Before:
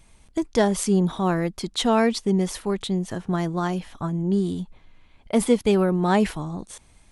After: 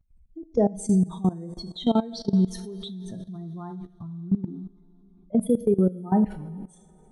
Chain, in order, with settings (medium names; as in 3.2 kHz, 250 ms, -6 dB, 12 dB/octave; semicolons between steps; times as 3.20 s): spectral contrast enhancement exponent 2.5; band-stop 5 kHz, Q 13; two-slope reverb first 0.47 s, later 3.5 s, from -18 dB, DRR 6 dB; level held to a coarse grid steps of 18 dB